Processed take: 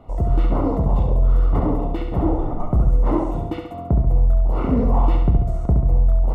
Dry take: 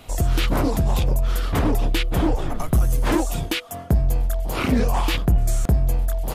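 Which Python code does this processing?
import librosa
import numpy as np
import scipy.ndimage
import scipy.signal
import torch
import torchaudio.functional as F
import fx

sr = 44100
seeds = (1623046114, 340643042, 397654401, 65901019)

p1 = scipy.signal.savgol_filter(x, 65, 4, mode='constant')
y = p1 + fx.room_flutter(p1, sr, wall_m=11.8, rt60_s=0.78, dry=0)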